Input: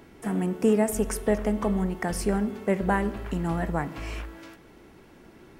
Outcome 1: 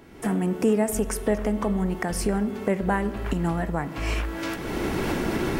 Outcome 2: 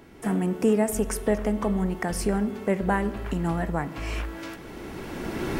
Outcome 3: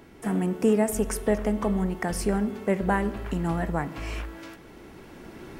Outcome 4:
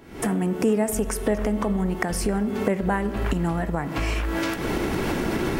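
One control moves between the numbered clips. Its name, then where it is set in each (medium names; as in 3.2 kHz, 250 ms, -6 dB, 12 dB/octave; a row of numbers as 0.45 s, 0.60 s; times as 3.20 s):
recorder AGC, rising by: 31 dB/s, 13 dB/s, 5 dB/s, 80 dB/s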